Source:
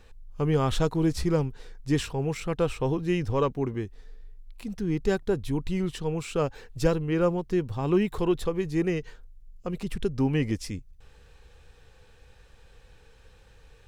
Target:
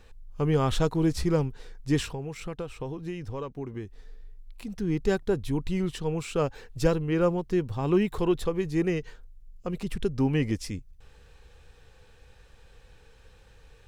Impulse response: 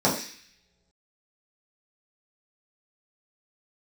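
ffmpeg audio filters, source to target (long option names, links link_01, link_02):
-filter_complex "[0:a]asettb=1/sr,asplit=3[link_01][link_02][link_03];[link_01]atrim=end=2.114[link_04];[link_02]atrim=start=2.11:end=4.76,asetpts=PTS-STARTPTS,afade=type=in:duration=0.004:curve=qsin,afade=type=out:start_time=2.646:duration=0.004:curve=qsin,acompressor=threshold=-32dB:ratio=6[link_05];[link_03]atrim=start=4.756[link_06];[link_04][link_05]acrossfade=duration=0.004:curve1=hsin:curve2=qsin[link_07];[link_07][link_06]acrossfade=duration=0.004:curve1=qsin:curve2=hsin"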